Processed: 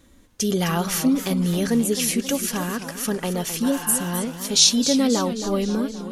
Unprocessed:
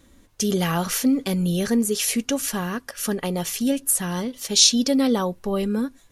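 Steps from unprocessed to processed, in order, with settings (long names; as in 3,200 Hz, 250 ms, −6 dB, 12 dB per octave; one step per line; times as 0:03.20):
healed spectral selection 0:03.66–0:04.06, 710–3,100 Hz after
feedback echo with a swinging delay time 264 ms, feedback 57%, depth 172 cents, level −10.5 dB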